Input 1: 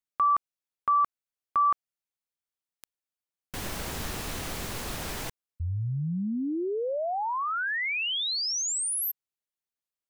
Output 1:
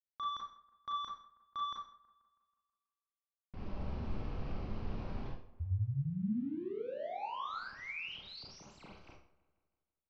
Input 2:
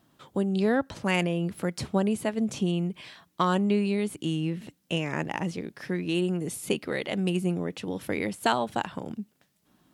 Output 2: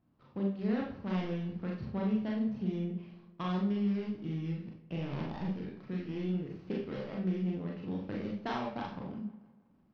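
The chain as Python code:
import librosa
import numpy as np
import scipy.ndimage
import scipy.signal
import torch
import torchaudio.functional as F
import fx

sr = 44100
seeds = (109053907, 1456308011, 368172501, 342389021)

p1 = scipy.ndimage.median_filter(x, 25, mode='constant')
p2 = scipy.signal.sosfilt(scipy.signal.ellip(4, 1.0, 60, 5300.0, 'lowpass', fs=sr, output='sos'), p1)
p3 = fx.high_shelf(p2, sr, hz=2900.0, db=-11.0)
p4 = fx.rider(p3, sr, range_db=4, speed_s=0.5)
p5 = p3 + F.gain(torch.from_numpy(p4), -2.0).numpy()
p6 = fx.peak_eq(p5, sr, hz=550.0, db=-9.0, octaves=2.8)
p7 = p6 + fx.echo_wet_lowpass(p6, sr, ms=162, feedback_pct=53, hz=2000.0, wet_db=-18, dry=0)
p8 = fx.rev_schroeder(p7, sr, rt60_s=0.42, comb_ms=29, drr_db=-2.0)
y = F.gain(torch.from_numpy(p8), -9.0).numpy()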